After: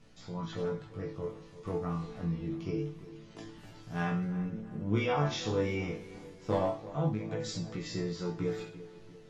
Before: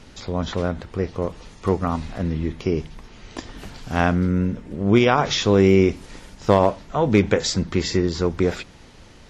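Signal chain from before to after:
parametric band 160 Hz +6.5 dB 1.4 octaves
resonators tuned to a chord A2 sus4, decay 0.46 s
0:07.09–0:07.94: downward compressor 12 to 1, threshold −34 dBFS, peak gain reduction 12 dB
chorus effect 0.25 Hz, delay 16.5 ms, depth 6.6 ms
tape delay 341 ms, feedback 58%, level −14 dB, low-pass 1,700 Hz
level +4.5 dB

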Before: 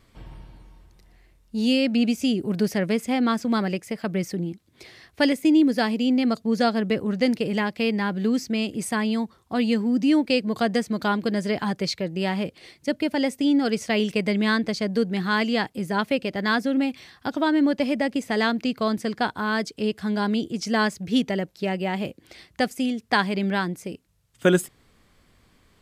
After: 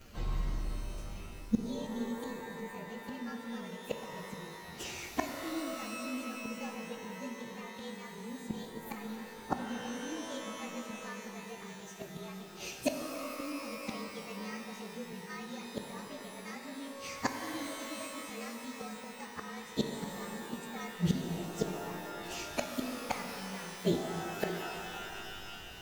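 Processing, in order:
partials spread apart or drawn together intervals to 112%
gate with flip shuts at −25 dBFS, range −29 dB
reverb with rising layers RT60 2.9 s, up +12 semitones, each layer −2 dB, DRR 4.5 dB
level +8 dB

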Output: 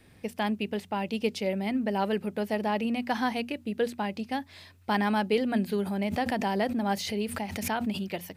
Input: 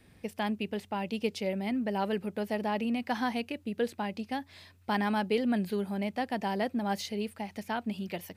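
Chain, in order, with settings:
mains-hum notches 60/120/180/240 Hz
0:05.73–0:08.03: background raised ahead of every attack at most 60 dB per second
level +3 dB

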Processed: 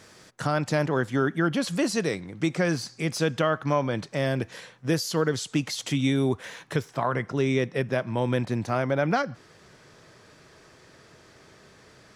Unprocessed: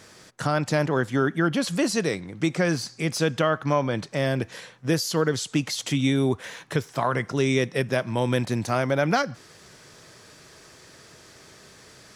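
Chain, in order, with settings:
high-shelf EQ 4,300 Hz −2 dB, from 0:06.91 −11 dB
level −1.5 dB

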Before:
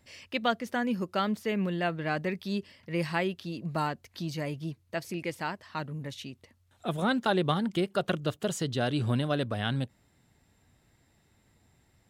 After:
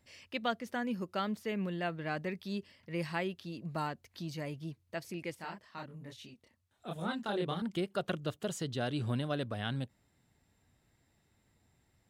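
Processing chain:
0:05.35–0:07.62: multi-voice chorus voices 2, 1.2 Hz, delay 27 ms, depth 3 ms
level −6 dB

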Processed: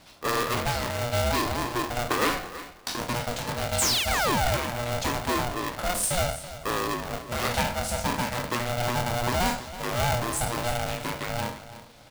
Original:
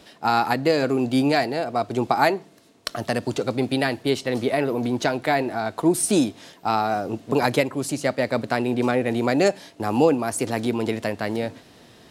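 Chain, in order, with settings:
peak hold with a decay on every bin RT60 0.47 s
hum removal 159.8 Hz, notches 2
sound drawn into the spectrogram fall, 0:03.78–0:04.57, 210–8,800 Hz −18 dBFS
in parallel at −8 dB: wrap-around overflow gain 15 dB
on the sum: auto-filter notch sine 0.79 Hz 400–2,300 Hz
on a send: repeating echo 326 ms, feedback 20%, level −14.5 dB
on the sum: ring modulator with a square carrier 360 Hz
level −7 dB

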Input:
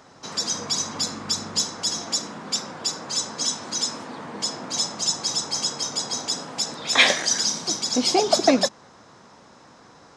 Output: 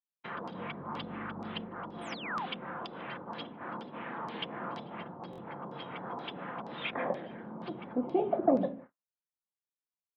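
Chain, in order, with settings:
rectangular room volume 370 cubic metres, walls furnished, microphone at 0.84 metres
treble cut that deepens with the level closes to 570 Hz, closed at −21 dBFS
high shelf with overshoot 4,200 Hz −10.5 dB, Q 3
repeating echo 152 ms, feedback 45%, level −24 dB
sound drawn into the spectrogram fall, 0:02.01–0:02.46, 700–10,000 Hz −30 dBFS
high-frequency loss of the air 53 metres
noise gate −39 dBFS, range −58 dB
auto-filter low-pass saw down 2.1 Hz 960–5,000 Hz
buffer that repeats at 0:05.31, samples 1,024, times 2
level −7 dB

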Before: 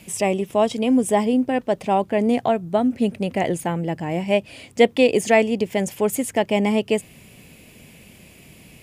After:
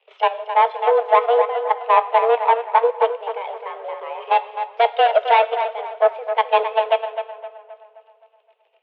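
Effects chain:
reverb reduction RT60 0.92 s
harmonic and percussive parts rebalanced percussive −3 dB
leveller curve on the samples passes 3
output level in coarse steps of 11 dB
high-frequency loss of the air 59 metres
tape delay 261 ms, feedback 54%, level −4.5 dB, low-pass 2,600 Hz
on a send at −10 dB: convolution reverb, pre-delay 3 ms
on the sum: single-sideband voice off tune +230 Hz 250–3,300 Hz
expander for the loud parts 1.5 to 1, over −23 dBFS

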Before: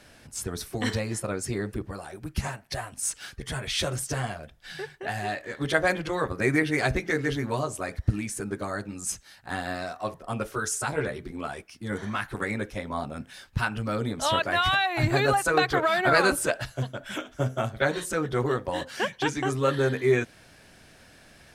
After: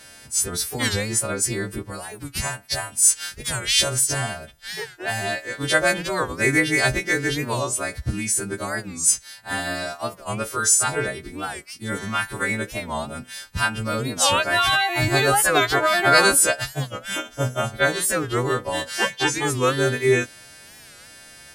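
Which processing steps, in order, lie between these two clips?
every partial snapped to a pitch grid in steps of 2 semitones
wow of a warped record 45 rpm, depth 160 cents
level +3.5 dB

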